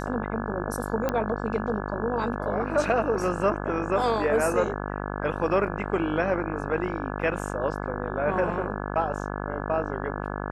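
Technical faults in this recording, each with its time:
mains buzz 50 Hz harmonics 34 −32 dBFS
0:01.09: click −13 dBFS

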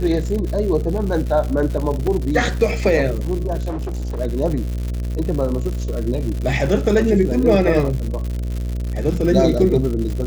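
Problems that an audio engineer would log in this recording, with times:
mains buzz 60 Hz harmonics 11 −23 dBFS
surface crackle 170 per second −25 dBFS
0:02.07: drop-out 4.1 ms
0:03.69–0:04.20: clipping −22 dBFS

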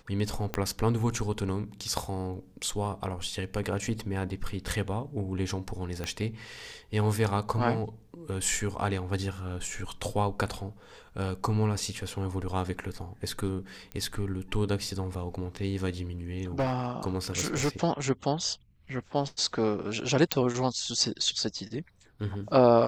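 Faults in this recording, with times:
0:00.54: click −15 dBFS
0:06.04: click −19 dBFS
0:13.92: click −24 dBFS
0:16.59–0:17.69: clipping −22.5 dBFS
0:20.32: click −6 dBFS

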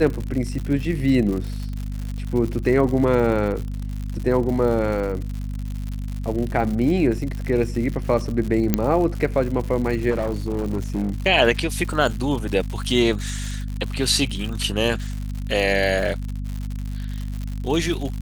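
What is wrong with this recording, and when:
surface crackle 140 per second −28 dBFS
mains hum 50 Hz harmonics 5 −28 dBFS
0:08.74: click −4 dBFS
0:10.10–0:11.14: clipping −18.5 dBFS

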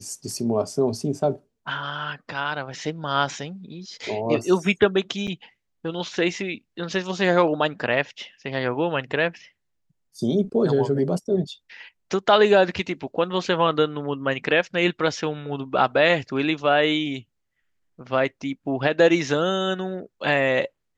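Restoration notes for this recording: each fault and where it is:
0:05.27–0:05.28: drop-out 6.4 ms

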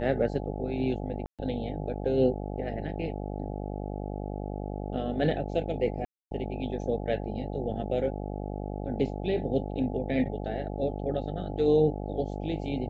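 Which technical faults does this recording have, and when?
mains buzz 50 Hz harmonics 17 −35 dBFS
0:01.26–0:01.39: drop-out 127 ms
0:06.05–0:06.31: drop-out 262 ms

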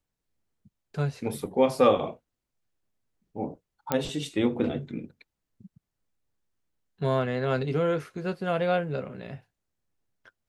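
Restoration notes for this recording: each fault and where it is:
0:03.92: click −10 dBFS

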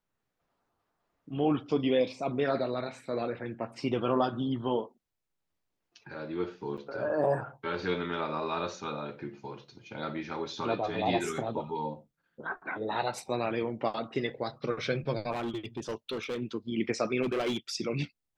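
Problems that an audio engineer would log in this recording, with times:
0:06.77–0:06.78: drop-out 7.2 ms
0:15.31–0:16.40: clipping −30 dBFS
0:17.22–0:17.57: clipping −26.5 dBFS

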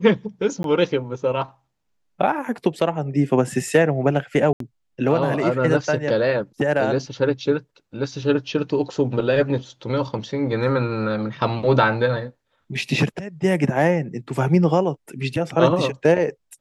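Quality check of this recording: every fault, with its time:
0:00.63–0:00.64: drop-out 12 ms
0:04.53–0:04.60: drop-out 73 ms

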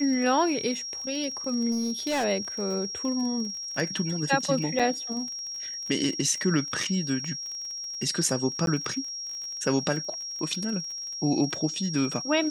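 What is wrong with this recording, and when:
surface crackle 28 per second −34 dBFS
whistle 5,600 Hz −33 dBFS
0:01.71–0:02.25: clipping −23.5 dBFS
0:04.79–0:04.80: drop-out 5.4 ms
0:08.66–0:08.67: drop-out 12 ms

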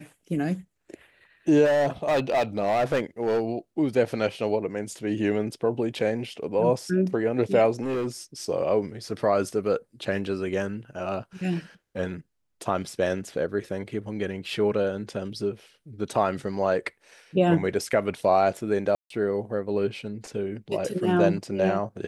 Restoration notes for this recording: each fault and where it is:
0:01.64–0:03.43: clipping −19 dBFS
0:07.81–0:08.07: clipping −24 dBFS
0:18.95–0:19.10: drop-out 153 ms

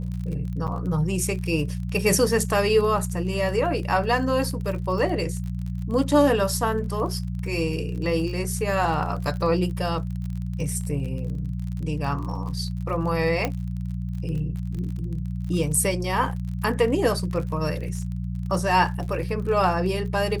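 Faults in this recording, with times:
surface crackle 40 per second −32 dBFS
mains hum 60 Hz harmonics 3 −29 dBFS
0:00.67–0:00.68: drop-out 7.6 ms
0:13.45: click −10 dBFS

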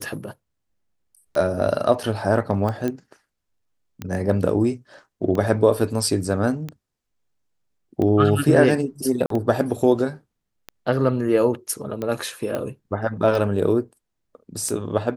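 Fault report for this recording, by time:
scratch tick 45 rpm −16 dBFS
0:02.88: click −13 dBFS
0:09.26–0:09.30: drop-out 43 ms
0:12.55: click −14 dBFS

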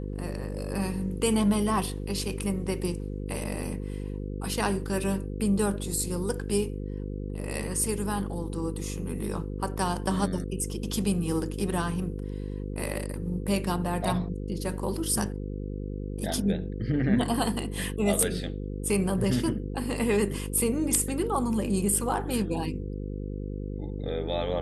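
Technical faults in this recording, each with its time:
mains buzz 50 Hz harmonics 10 −34 dBFS

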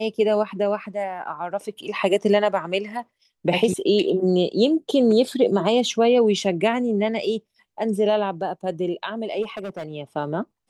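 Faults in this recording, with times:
0:09.42–0:09.93: clipping −26.5 dBFS

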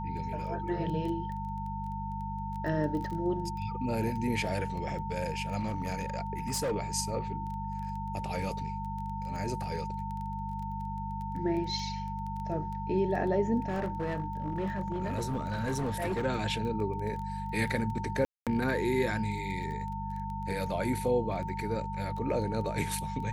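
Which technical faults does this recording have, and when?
surface crackle 13 per second −37 dBFS
mains hum 50 Hz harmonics 4 −38 dBFS
whistle 900 Hz −37 dBFS
0:05.59–0:06.72: clipping −27.5 dBFS
0:13.68–0:16.26: clipping −27.5 dBFS
0:18.25–0:18.47: drop-out 217 ms

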